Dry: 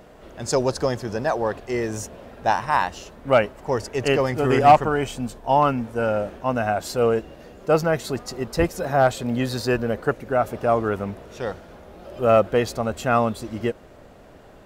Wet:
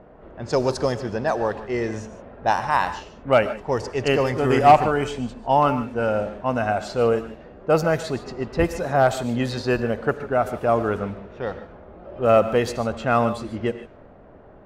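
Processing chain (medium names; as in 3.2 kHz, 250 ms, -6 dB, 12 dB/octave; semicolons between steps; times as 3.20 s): level-controlled noise filter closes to 1.3 kHz, open at -17 dBFS; gated-style reverb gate 170 ms rising, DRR 11.5 dB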